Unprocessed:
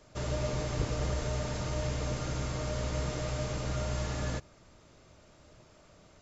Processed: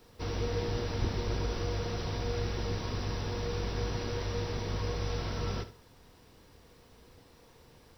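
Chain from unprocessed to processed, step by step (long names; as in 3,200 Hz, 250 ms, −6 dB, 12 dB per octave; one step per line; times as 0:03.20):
flutter between parallel walls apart 9.3 metres, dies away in 0.25 s
speed change −22%
bit reduction 11 bits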